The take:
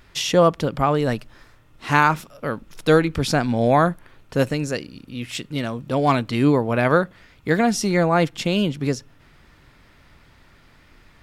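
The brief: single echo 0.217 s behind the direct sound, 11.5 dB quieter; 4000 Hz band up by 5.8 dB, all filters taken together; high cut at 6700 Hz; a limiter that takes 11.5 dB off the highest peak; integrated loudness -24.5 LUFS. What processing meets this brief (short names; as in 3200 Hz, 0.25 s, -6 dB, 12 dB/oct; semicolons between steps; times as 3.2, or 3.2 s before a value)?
LPF 6700 Hz; bell 4000 Hz +8 dB; limiter -11.5 dBFS; echo 0.217 s -11.5 dB; gain -1.5 dB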